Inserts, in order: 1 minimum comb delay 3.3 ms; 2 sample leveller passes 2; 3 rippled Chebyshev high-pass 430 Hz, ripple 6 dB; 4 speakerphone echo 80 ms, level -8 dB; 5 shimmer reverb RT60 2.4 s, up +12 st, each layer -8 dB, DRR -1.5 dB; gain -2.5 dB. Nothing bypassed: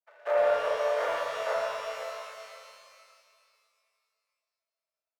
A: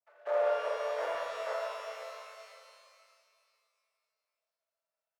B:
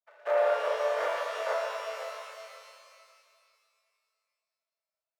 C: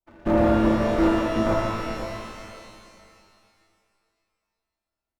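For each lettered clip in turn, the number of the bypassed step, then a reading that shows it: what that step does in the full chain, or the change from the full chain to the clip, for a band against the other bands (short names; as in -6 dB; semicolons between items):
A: 2, loudness change -5.0 LU; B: 4, momentary loudness spread change -2 LU; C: 3, 1 kHz band +1.5 dB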